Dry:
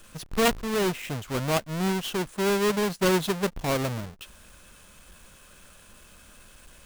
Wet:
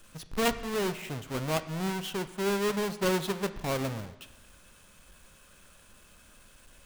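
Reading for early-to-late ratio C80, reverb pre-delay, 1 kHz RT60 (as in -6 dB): 15.0 dB, 4 ms, 1.1 s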